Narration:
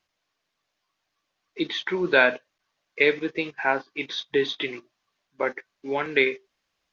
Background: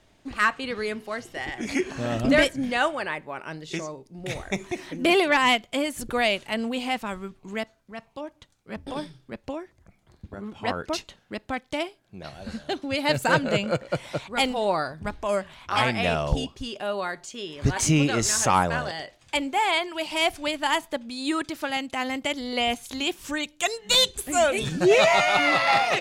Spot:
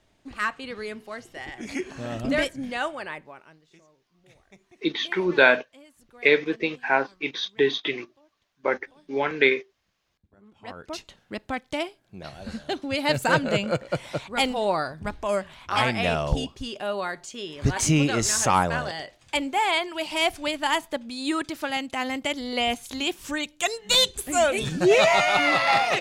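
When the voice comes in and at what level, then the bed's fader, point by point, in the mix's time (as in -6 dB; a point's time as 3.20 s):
3.25 s, +1.5 dB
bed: 3.21 s -5 dB
3.71 s -25 dB
10.15 s -25 dB
11.20 s 0 dB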